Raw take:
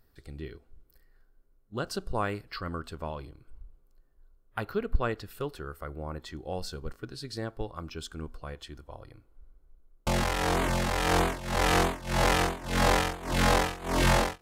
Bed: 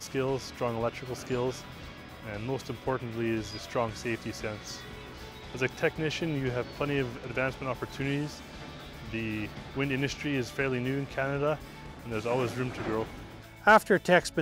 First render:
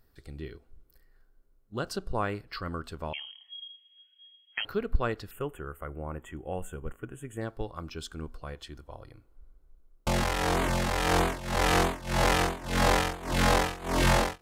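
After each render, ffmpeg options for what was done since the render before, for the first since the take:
ffmpeg -i in.wav -filter_complex "[0:a]asettb=1/sr,asplit=3[link_01][link_02][link_03];[link_01]atrim=end=1.934[link_04];[link_02]atrim=start=1.93:end=2.52,asetpts=PTS-STARTPTS,afade=type=in:duration=0.004:curve=qsin,afade=type=out:start_time=0.586:duration=0.004:curve=qsin,highshelf=frequency=5300:gain=-6[link_05];[link_03]atrim=start=2.516[link_06];[link_04][link_05]acrossfade=duration=0.004:curve1=hsin:curve2=qsin[link_07];[link_07][link_06]acrossfade=duration=0.004:curve1=qsin:curve2=hsin,asettb=1/sr,asplit=3[link_08][link_09][link_10];[link_08]atrim=end=3.134[link_11];[link_09]atrim=start=3.13:end=4.65,asetpts=PTS-STARTPTS,afade=type=in:duration=0.004:curve=qsin,afade=type=out:start_time=1.516:duration=0.004:curve=qsin,lowpass=frequency=2800:width_type=q:width=0.5098,lowpass=frequency=2800:width_type=q:width=0.6013,lowpass=frequency=2800:width_type=q:width=0.9,lowpass=frequency=2800:width_type=q:width=2.563,afreqshift=-3300[link_12];[link_10]atrim=start=4.646[link_13];[link_11][link_12]acrossfade=duration=0.004:curve1=hsin:curve2=qsin[link_14];[link_14][link_13]acrossfade=duration=0.004:curve1=qsin:curve2=hsin,asettb=1/sr,asplit=3[link_15][link_16][link_17];[link_15]atrim=end=5.314[link_18];[link_16]atrim=start=5.31:end=7.41,asetpts=PTS-STARTPTS,afade=type=in:duration=0.004:curve=qsin,afade=type=out:start_time=2.096:duration=0.004:curve=qsin,asuperstop=centerf=4700:order=12:qfactor=1.3[link_19];[link_17]atrim=start=7.406[link_20];[link_18][link_19]acrossfade=duration=0.004:curve1=hsin:curve2=qsin[link_21];[link_21][link_20]acrossfade=duration=0.004:curve1=qsin:curve2=hsin" out.wav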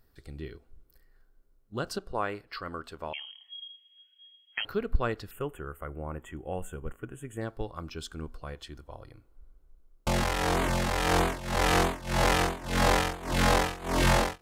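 ffmpeg -i in.wav -filter_complex "[0:a]asettb=1/sr,asplit=3[link_01][link_02][link_03];[link_01]atrim=end=1.984[link_04];[link_02]atrim=start=1.98:end=3.28,asetpts=PTS-STARTPTS,afade=type=in:duration=0.004:curve=qsin,afade=type=out:start_time=1.296:duration=0.004:curve=qsin,bass=frequency=250:gain=-9,treble=frequency=4000:gain=-3[link_05];[link_03]atrim=start=3.276[link_06];[link_04][link_05]acrossfade=duration=0.004:curve1=hsin:curve2=qsin[link_07];[link_07][link_06]acrossfade=duration=0.004:curve1=qsin:curve2=hsin" out.wav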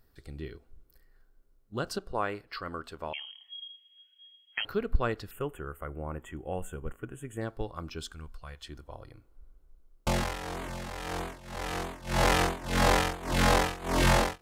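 ffmpeg -i in.wav -filter_complex "[0:a]asettb=1/sr,asplit=3[link_01][link_02][link_03];[link_01]atrim=end=8.124[link_04];[link_02]atrim=start=8.12:end=8.65,asetpts=PTS-STARTPTS,afade=type=in:duration=0.004:curve=qsin,afade=type=out:start_time=0.526:duration=0.004:curve=qsin,equalizer=frequency=330:width_type=o:width=2.3:gain=-13.5[link_05];[link_03]atrim=start=8.646[link_06];[link_04][link_05]acrossfade=duration=0.004:curve1=hsin:curve2=qsin[link_07];[link_07][link_06]acrossfade=duration=0.004:curve1=qsin:curve2=hsin,asplit=3[link_08][link_09][link_10];[link_08]atrim=end=10.41,asetpts=PTS-STARTPTS,afade=type=out:start_time=10.09:duration=0.32:silence=0.298538[link_11];[link_09]atrim=start=10.41:end=11.87,asetpts=PTS-STARTPTS,volume=-10.5dB[link_12];[link_10]atrim=start=11.87,asetpts=PTS-STARTPTS,afade=type=in:duration=0.32:silence=0.298538[link_13];[link_11][link_12][link_13]concat=n=3:v=0:a=1" out.wav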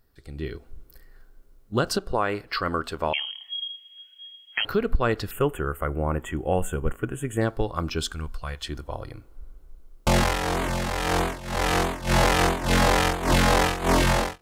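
ffmpeg -i in.wav -af "alimiter=limit=-23dB:level=0:latency=1:release=177,dynaudnorm=framelen=170:gausssize=5:maxgain=11.5dB" out.wav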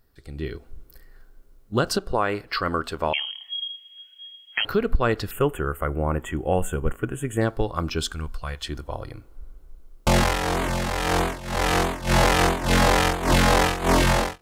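ffmpeg -i in.wav -af "volume=1.5dB" out.wav

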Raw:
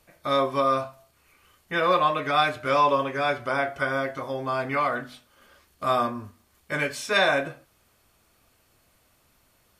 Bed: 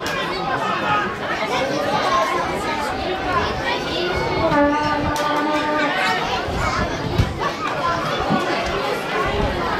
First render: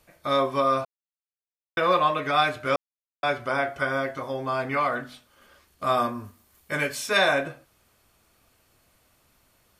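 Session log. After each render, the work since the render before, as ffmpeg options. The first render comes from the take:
ffmpeg -i in.wav -filter_complex "[0:a]asettb=1/sr,asplit=3[link_01][link_02][link_03];[link_01]atrim=end=5.974[link_04];[link_02]atrim=start=5.97:end=7.33,asetpts=PTS-STARTPTS,afade=type=in:duration=0.004:curve=qsin,afade=type=out:start_time=1.356:duration=0.004:curve=qsin,highshelf=frequency=11000:gain=10.5[link_05];[link_03]atrim=start=7.326[link_06];[link_04][link_05]acrossfade=duration=0.004:curve1=hsin:curve2=qsin[link_07];[link_07][link_06]acrossfade=duration=0.004:curve1=qsin:curve2=hsin,asplit=5[link_08][link_09][link_10][link_11][link_12];[link_08]atrim=end=0.85,asetpts=PTS-STARTPTS,afade=type=out:start_time=0.846:duration=0.004:curve=hsin[link_13];[link_09]atrim=start=0.85:end=1.77,asetpts=PTS-STARTPTS,volume=0[link_14];[link_10]atrim=start=1.77:end=2.76,asetpts=PTS-STARTPTS,afade=type=in:duration=0.004:curve=hsin,afade=type=out:start_time=0.986:duration=0.004:curve=hsin[link_15];[link_11]atrim=start=2.76:end=3.23,asetpts=PTS-STARTPTS,volume=0[link_16];[link_12]atrim=start=3.23,asetpts=PTS-STARTPTS,afade=type=in:duration=0.004:curve=hsin[link_17];[link_13][link_14][link_15][link_16][link_17]concat=n=5:v=0:a=1" out.wav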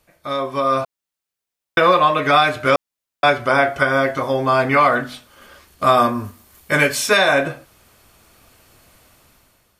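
ffmpeg -i in.wav -af "alimiter=limit=-15dB:level=0:latency=1:release=292,dynaudnorm=framelen=290:gausssize=5:maxgain=12dB" out.wav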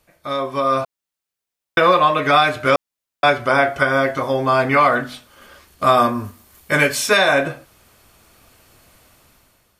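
ffmpeg -i in.wav -af anull out.wav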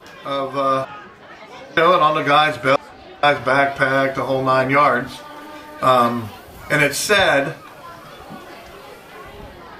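ffmpeg -i in.wav -i bed.wav -filter_complex "[1:a]volume=-17dB[link_01];[0:a][link_01]amix=inputs=2:normalize=0" out.wav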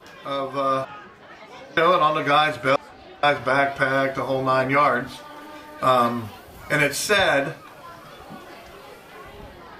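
ffmpeg -i in.wav -af "volume=-4dB" out.wav

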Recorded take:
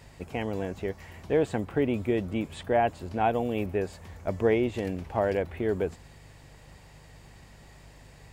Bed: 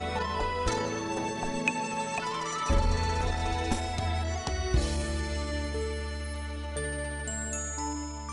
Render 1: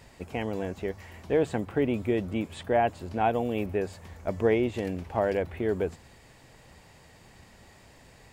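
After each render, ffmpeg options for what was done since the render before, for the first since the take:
ffmpeg -i in.wav -af "bandreject=frequency=50:width_type=h:width=4,bandreject=frequency=100:width_type=h:width=4,bandreject=frequency=150:width_type=h:width=4" out.wav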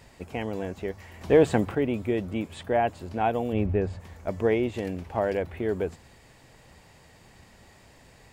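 ffmpeg -i in.wav -filter_complex "[0:a]asettb=1/sr,asplit=3[link_01][link_02][link_03];[link_01]atrim=end=1.214[link_04];[link_02]atrim=start=1.21:end=1.75,asetpts=PTS-STARTPTS,afade=type=in:duration=0.004:curve=qsin,afade=type=out:start_time=0.536:duration=0.004:curve=qsin,acontrast=74[link_05];[link_03]atrim=start=1.746[link_06];[link_04][link_05]acrossfade=duration=0.004:curve1=hsin:curve2=qsin[link_07];[link_07][link_06]acrossfade=duration=0.004:curve1=qsin:curve2=hsin,asplit=3[link_08][link_09][link_10];[link_08]afade=type=out:start_time=3.52:duration=0.02[link_11];[link_09]aemphasis=mode=reproduction:type=bsi,afade=type=in:start_time=3.52:duration=0.02,afade=type=out:start_time=3.99:duration=0.02[link_12];[link_10]afade=type=in:start_time=3.99:duration=0.02[link_13];[link_11][link_12][link_13]amix=inputs=3:normalize=0" out.wav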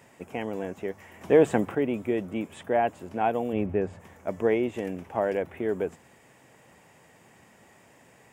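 ffmpeg -i in.wav -af "highpass=160,equalizer=frequency=4300:width_type=o:width=0.48:gain=-13" out.wav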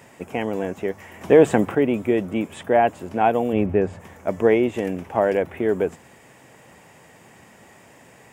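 ffmpeg -i in.wav -af "volume=7dB,alimiter=limit=-3dB:level=0:latency=1" out.wav

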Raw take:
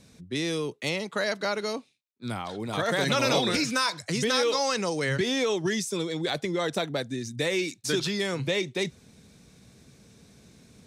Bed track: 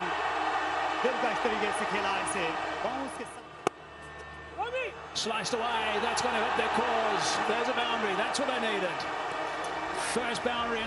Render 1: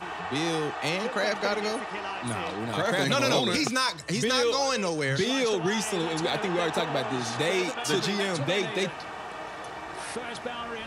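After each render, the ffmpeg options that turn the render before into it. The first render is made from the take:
ffmpeg -i in.wav -i bed.wav -filter_complex "[1:a]volume=-4.5dB[link_01];[0:a][link_01]amix=inputs=2:normalize=0" out.wav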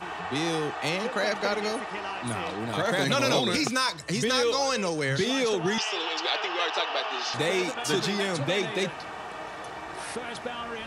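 ffmpeg -i in.wav -filter_complex "[0:a]asettb=1/sr,asplit=3[link_01][link_02][link_03];[link_01]atrim=end=5.784[link_04];[link_02]atrim=start=5.78:end=7.34,asetpts=PTS-STARTPTS,afade=type=in:duration=0.004:curve=qsin,afade=type=out:start_time=1.556:duration=0.004:curve=qsin,highpass=frequency=420:width=0.5412,highpass=frequency=420:width=1.3066,equalizer=frequency=520:width_type=q:width=4:gain=-6,equalizer=frequency=1200:width_type=q:width=4:gain=3,equalizer=frequency=2900:width_type=q:width=4:gain=10,equalizer=frequency=5000:width_type=q:width=4:gain=8,lowpass=frequency=6000:width=0.5412,lowpass=frequency=6000:width=1.3066[link_05];[link_03]atrim=start=7.336[link_06];[link_04][link_05]acrossfade=duration=0.004:curve1=hsin:curve2=qsin[link_07];[link_07][link_06]acrossfade=duration=0.004:curve1=qsin:curve2=hsin" out.wav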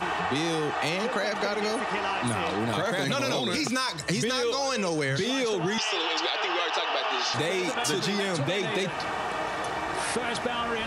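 ffmpeg -i in.wav -filter_complex "[0:a]asplit=2[link_01][link_02];[link_02]alimiter=limit=-22.5dB:level=0:latency=1,volume=3dB[link_03];[link_01][link_03]amix=inputs=2:normalize=0,acompressor=threshold=-24dB:ratio=6" out.wav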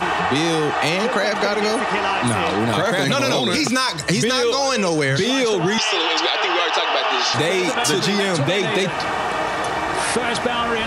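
ffmpeg -i in.wav -af "volume=8.5dB" out.wav

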